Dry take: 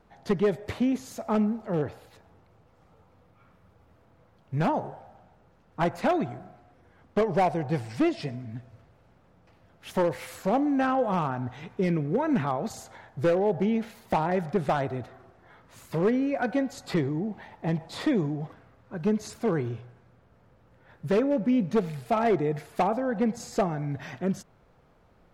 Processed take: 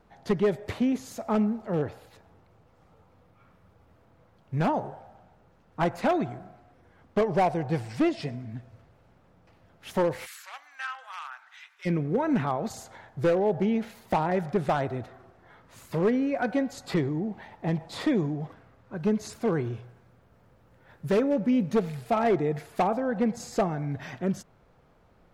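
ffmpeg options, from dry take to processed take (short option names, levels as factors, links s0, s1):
-filter_complex "[0:a]asplit=3[s0][s1][s2];[s0]afade=t=out:st=10.25:d=0.02[s3];[s1]highpass=f=1400:w=0.5412,highpass=f=1400:w=1.3066,afade=t=in:st=10.25:d=0.02,afade=t=out:st=11.85:d=0.02[s4];[s2]afade=t=in:st=11.85:d=0.02[s5];[s3][s4][s5]amix=inputs=3:normalize=0,asettb=1/sr,asplit=3[s6][s7][s8];[s6]atrim=end=19.734[s9];[s7]atrim=start=19.73:end=21.76,asetpts=PTS-STARTPTS,afade=t=in:d=0.004:c=qsin,afade=t=out:st=2.026:d=0.004:c=qsin,highshelf=f=7800:g=7[s10];[s8]atrim=start=21.756[s11];[s9][s10]acrossfade=d=0.004:c1=hsin:c2=qsin[s12];[s12][s11]acrossfade=d=0.004:c1=qsin:c2=hsin"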